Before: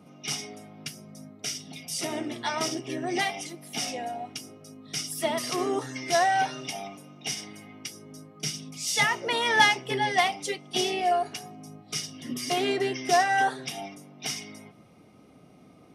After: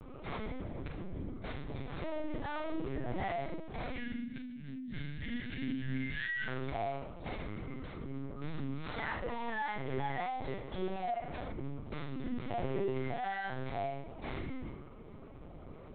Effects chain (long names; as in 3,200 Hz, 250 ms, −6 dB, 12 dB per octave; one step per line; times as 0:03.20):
running median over 15 samples
time-frequency box erased 0:03.90–0:06.48, 260–1,400 Hz
downward compressor 4 to 1, threshold −29 dBFS, peak gain reduction 10.5 dB
brickwall limiter −32.5 dBFS, peak gain reduction 11.5 dB
soft clipping −36 dBFS, distortion −17 dB
flutter between parallel walls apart 6.5 metres, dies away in 0.61 s
linear-prediction vocoder at 8 kHz pitch kept
level +3 dB